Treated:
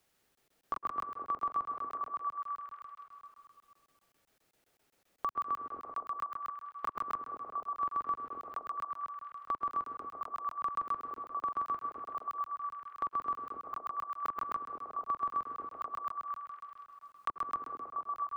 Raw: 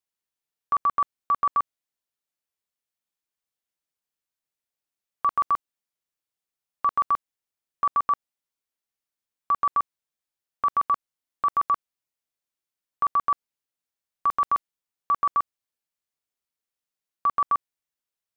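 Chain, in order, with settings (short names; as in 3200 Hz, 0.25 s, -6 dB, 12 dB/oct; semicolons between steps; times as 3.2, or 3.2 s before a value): limiter -26 dBFS, peak gain reduction 9.5 dB; high shelf 2300 Hz -9 dB; delay with a stepping band-pass 0.236 s, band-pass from 340 Hz, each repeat 0.7 oct, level 0 dB; on a send at -6 dB: reverb RT60 1.6 s, pre-delay 0.104 s; on the sum: dynamic EQ 330 Hz, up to +6 dB, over -57 dBFS, Q 1.4; notch 1000 Hz, Q 8.1; crackling interface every 0.13 s, samples 1024, zero, from 0.35; three-band squash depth 70%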